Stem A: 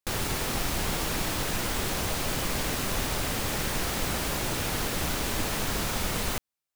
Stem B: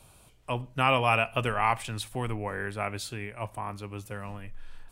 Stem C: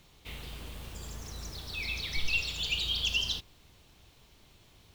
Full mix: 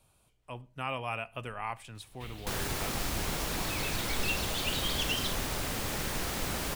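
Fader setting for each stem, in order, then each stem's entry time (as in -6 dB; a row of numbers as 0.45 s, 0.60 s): -4.5 dB, -11.5 dB, -4.0 dB; 2.40 s, 0.00 s, 1.95 s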